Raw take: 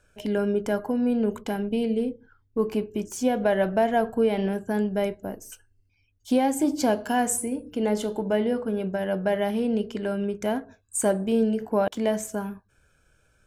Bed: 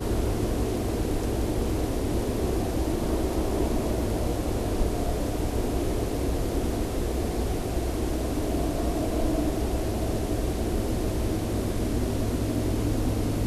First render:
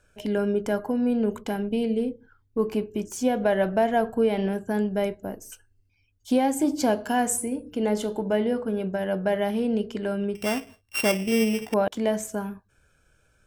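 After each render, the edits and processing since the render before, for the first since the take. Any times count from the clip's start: 10.35–11.74 s: sorted samples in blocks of 16 samples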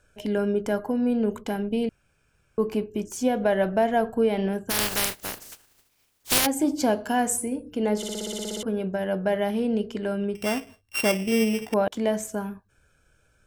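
1.89–2.58 s: room tone; 4.69–6.45 s: spectral contrast reduction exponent 0.19; 7.97 s: stutter in place 0.06 s, 11 plays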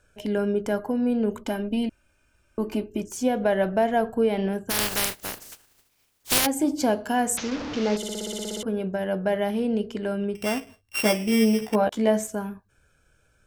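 1.41–3.02 s: comb 3.3 ms; 7.37–7.97 s: one-bit delta coder 32 kbps, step -26.5 dBFS; 11.00–12.27 s: doubling 14 ms -4 dB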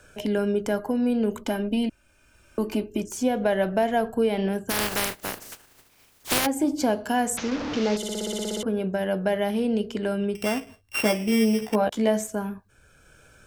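three bands compressed up and down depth 40%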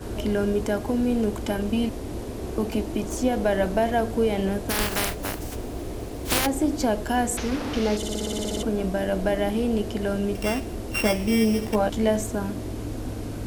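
add bed -6 dB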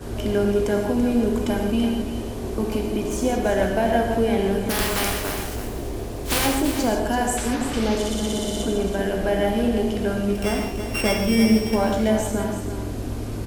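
delay 334 ms -9.5 dB; gated-style reverb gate 190 ms flat, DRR 1.5 dB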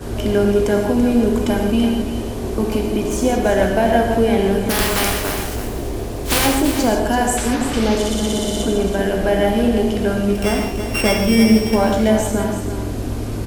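trim +5 dB; peak limiter -3 dBFS, peak gain reduction 1.5 dB

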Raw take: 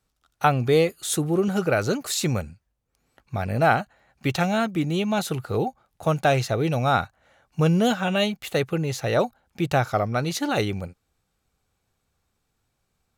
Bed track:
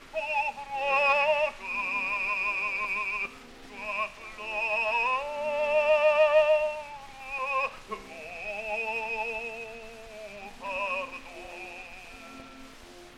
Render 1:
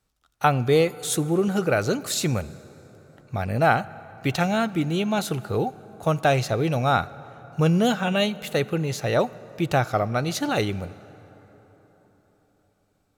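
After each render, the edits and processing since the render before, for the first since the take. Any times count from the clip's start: plate-style reverb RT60 4.5 s, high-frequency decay 0.5×, DRR 18 dB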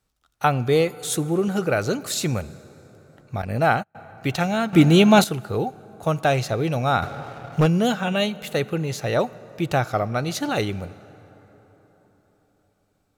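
3.42–3.95 s: gate -30 dBFS, range -34 dB; 4.73–5.24 s: gain +10.5 dB; 7.02–7.66 s: waveshaping leveller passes 2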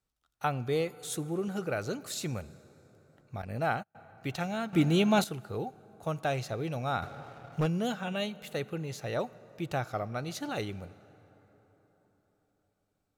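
trim -11 dB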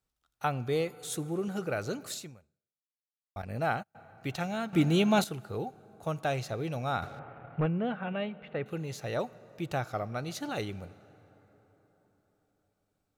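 2.13–3.36 s: fade out exponential; 7.19–8.66 s: low-pass 2.5 kHz 24 dB/octave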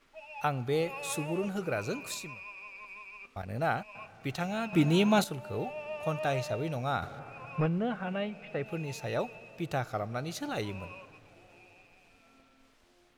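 add bed track -16.5 dB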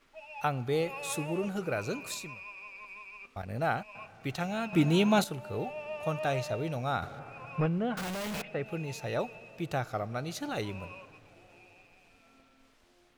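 7.97–8.42 s: one-bit comparator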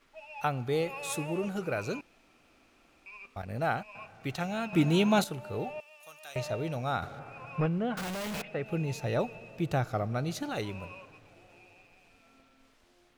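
2.01–3.06 s: room tone; 5.80–6.36 s: differentiator; 8.69–10.43 s: bass shelf 390 Hz +6.5 dB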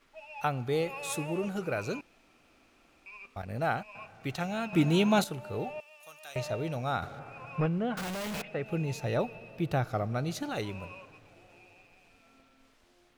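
9.17–9.90 s: peaking EQ 7.1 kHz -7 dB 0.47 oct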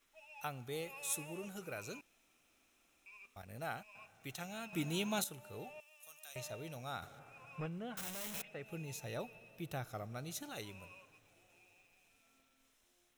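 pre-emphasis filter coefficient 0.8; band-stop 4.6 kHz, Q 5.9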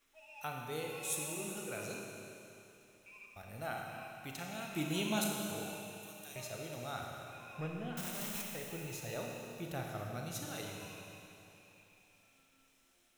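Schroeder reverb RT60 2.9 s, combs from 26 ms, DRR 0 dB

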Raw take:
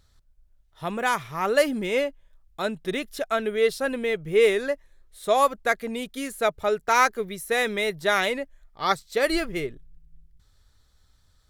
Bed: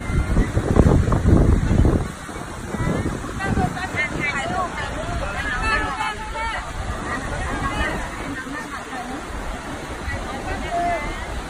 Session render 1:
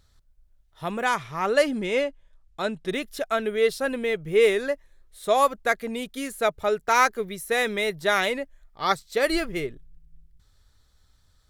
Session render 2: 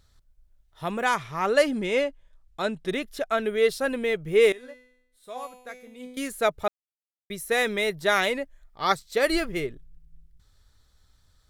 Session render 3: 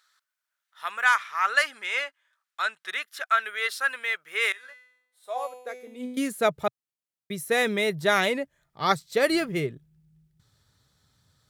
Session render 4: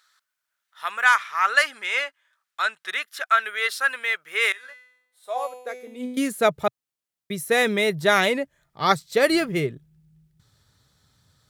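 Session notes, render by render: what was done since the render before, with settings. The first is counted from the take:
1.05–2.89 s: low-pass 9.3 kHz
2.94–3.38 s: treble shelf 4.9 kHz -5 dB; 4.52–6.17 s: feedback comb 250 Hz, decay 0.79 s, mix 90%; 6.68–7.30 s: mute
high-pass sweep 1.4 kHz -> 130 Hz, 4.79–6.55 s
trim +3.5 dB

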